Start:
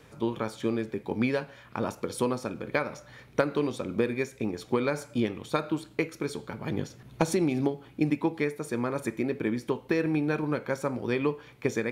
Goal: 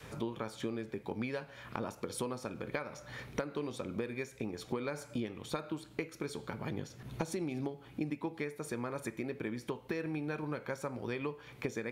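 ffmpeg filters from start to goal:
-af "adynamicequalizer=threshold=0.01:dfrequency=280:dqfactor=0.91:tfrequency=280:tqfactor=0.91:attack=5:release=100:ratio=0.375:range=2:mode=cutabove:tftype=bell,acompressor=threshold=0.00631:ratio=3,volume=1.78"

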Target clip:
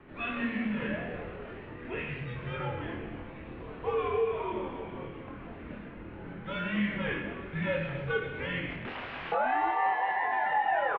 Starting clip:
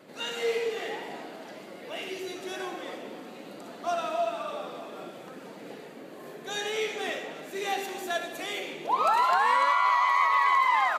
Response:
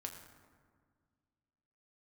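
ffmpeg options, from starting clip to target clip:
-filter_complex "[0:a]acompressor=threshold=0.0501:ratio=6,asettb=1/sr,asplit=3[s0][s1][s2];[s0]atrim=end=8.704[s3];[s1]atrim=start=8.7:end=9.32,asetpts=PTS-STARTPTS,afade=t=in:d=0.004:c=qsin,afade=t=out:st=0.616:d=0.004:c=qsin,aeval=exprs='(mod(37.6*val(0)+1,2)-1)/37.6':c=same[s4];[s2]atrim=start=9.316[s5];[s3][s4]acrossfade=d=0.004:c1=hsin:c2=qsin[s6];[s6][s5]acrossfade=d=0.004:c1=qsin:c2=hsin,asplit=2[s7][s8];[s8]adelay=25,volume=0.631[s9];[s7][s9]amix=inputs=2:normalize=0,highpass=f=250:t=q:w=0.5412,highpass=f=250:t=q:w=1.307,lowpass=f=3000:t=q:w=0.5176,lowpass=f=3000:t=q:w=0.7071,lowpass=f=3000:t=q:w=1.932,afreqshift=-230"

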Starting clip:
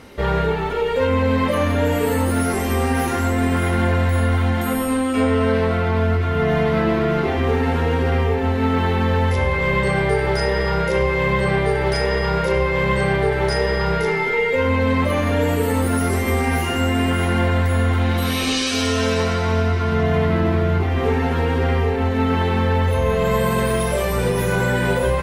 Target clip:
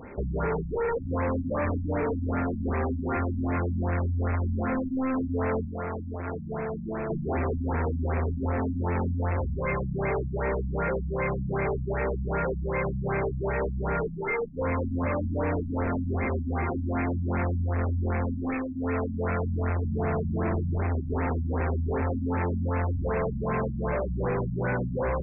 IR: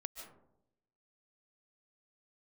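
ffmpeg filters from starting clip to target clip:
-filter_complex "[0:a]volume=17.8,asoftclip=hard,volume=0.0562,asettb=1/sr,asplit=3[s0][s1][s2];[s0]atrim=end=5.654[s3];[s1]atrim=start=5.65:end=7.1,asetpts=PTS-STARTPTS,afade=t=in:d=0.004:c=qsin,afade=t=out:st=1.446:d=0.004:c=qsin,acrossover=split=180|1700[s4][s5][s6];[s4]acompressor=threshold=0.0112:ratio=4[s7];[s5]acompressor=threshold=0.0316:ratio=4[s8];[s6]acompressor=threshold=0.00631:ratio=4[s9];[s7][s8][s9]amix=inputs=3:normalize=0[s10];[s2]atrim=start=7.096[s11];[s3][s10]acrossfade=d=0.004:c1=hsin:c2=qsin[s12];[s12][s11]acrossfade=d=0.004:c1=qsin:c2=hsin,afftfilt=real='re*lt(b*sr/1024,250*pow(2700/250,0.5+0.5*sin(2*PI*2.6*pts/sr)))':imag='im*lt(b*sr/1024,250*pow(2700/250,0.5+0.5*sin(2*PI*2.6*pts/sr)))':win_size=1024:overlap=0.75"

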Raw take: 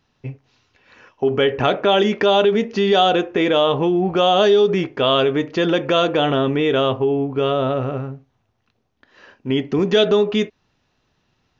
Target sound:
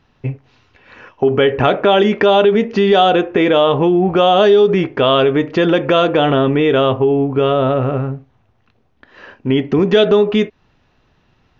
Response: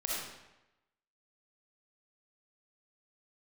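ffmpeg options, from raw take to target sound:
-filter_complex "[0:a]bass=f=250:g=-1,treble=f=4000:g=-10,asplit=2[s0][s1];[s1]acompressor=threshold=0.0501:ratio=6,volume=1.12[s2];[s0][s2]amix=inputs=2:normalize=0,lowshelf=f=79:g=6.5,volume=1.26"

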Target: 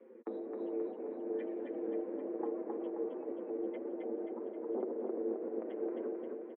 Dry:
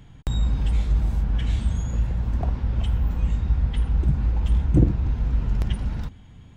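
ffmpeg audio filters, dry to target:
-filter_complex "[0:a]afftdn=nr=14:nf=-34,adynamicequalizer=threshold=0.00224:dfrequency=580:dqfactor=2.7:tfrequency=580:tqfactor=2.7:attack=5:release=100:ratio=0.375:range=2.5:mode=cutabove:tftype=bell,acompressor=threshold=0.0447:ratio=10,tremolo=f=300:d=0.71,asoftclip=type=tanh:threshold=0.0447,flanger=delay=6.4:depth=1.9:regen=16:speed=1.8:shape=triangular,asplit=2[s0][s1];[s1]aecho=0:1:265|530|795|1060|1325|1590|1855|2120:0.708|0.411|0.238|0.138|0.0801|0.0465|0.027|0.0156[s2];[s0][s2]amix=inputs=2:normalize=0,highpass=f=220:t=q:w=0.5412,highpass=f=220:t=q:w=1.307,lowpass=f=2100:t=q:w=0.5176,lowpass=f=2100:t=q:w=0.7071,lowpass=f=2100:t=q:w=1.932,afreqshift=95,volume=2.82"

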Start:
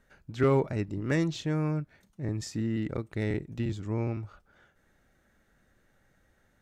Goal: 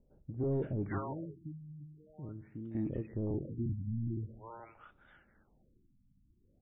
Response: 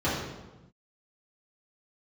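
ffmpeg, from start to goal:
-filter_complex "[0:a]asettb=1/sr,asplit=3[s0][s1][s2];[s0]atrim=end=0.984[s3];[s1]atrim=start=0.98:end=2.75,asetpts=PTS-STARTPTS,afade=t=in:d=0.004:c=qsin,afade=t=out:st=1.766:d=0.004:c=qsin,acompressor=threshold=0.00282:ratio=2[s4];[s2]atrim=start=2.746[s5];[s3][s4]acrossfade=d=0.004:c1=hsin:c2=qsin[s6];[s6][s5]acrossfade=d=0.004:c1=qsin:c2=hsin,asoftclip=type=tanh:threshold=0.0376,acrossover=split=620[s7][s8];[s8]adelay=520[s9];[s7][s9]amix=inputs=2:normalize=0,asplit=2[s10][s11];[1:a]atrim=start_sample=2205[s12];[s11][s12]afir=irnorm=-1:irlink=0,volume=0.0251[s13];[s10][s13]amix=inputs=2:normalize=0,afftfilt=real='re*lt(b*sr/1024,270*pow(3900/270,0.5+0.5*sin(2*PI*0.45*pts/sr)))':imag='im*lt(b*sr/1024,270*pow(3900/270,0.5+0.5*sin(2*PI*0.45*pts/sr)))':win_size=1024:overlap=0.75"

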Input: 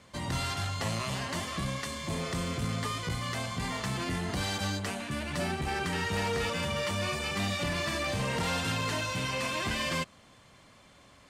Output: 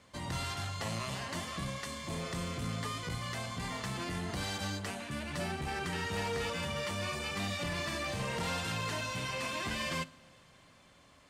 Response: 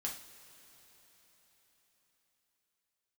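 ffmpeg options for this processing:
-filter_complex "[0:a]bandreject=f=52.31:t=h:w=4,bandreject=f=104.62:t=h:w=4,bandreject=f=156.93:t=h:w=4,bandreject=f=209.24:t=h:w=4,bandreject=f=261.55:t=h:w=4,bandreject=f=313.86:t=h:w=4,bandreject=f=366.17:t=h:w=4,asplit=2[s0][s1];[1:a]atrim=start_sample=2205[s2];[s1][s2]afir=irnorm=-1:irlink=0,volume=0.237[s3];[s0][s3]amix=inputs=2:normalize=0,volume=0.531"

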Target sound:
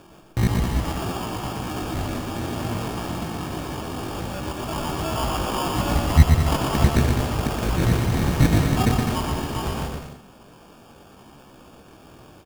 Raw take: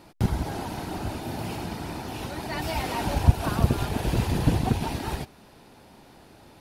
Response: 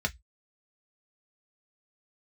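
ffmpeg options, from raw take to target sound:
-af "acrusher=samples=22:mix=1:aa=0.000001,atempo=0.53,aecho=1:1:120|204|262.8|304|332.8:0.631|0.398|0.251|0.158|0.1,volume=1.33"

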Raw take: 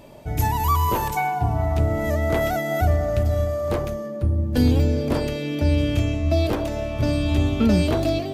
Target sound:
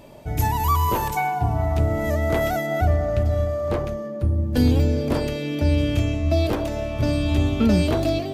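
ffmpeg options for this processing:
-filter_complex "[0:a]asettb=1/sr,asplit=3[s0][s1][s2];[s0]atrim=end=2.664[s3];[s1]atrim=start=2.66:end=4.2,asetpts=PTS-STARTPTS,afade=t=in:d=0.004:c=qsin,afade=t=out:st=1.536:d=0.004:c=qsin,highshelf=f=6300:g=-10[s4];[s2]atrim=start=4.196[s5];[s3][s4]acrossfade=d=0.004:c1=hsin:c2=qsin[s6];[s6][s5]acrossfade=d=0.004:c1=qsin:c2=hsin"

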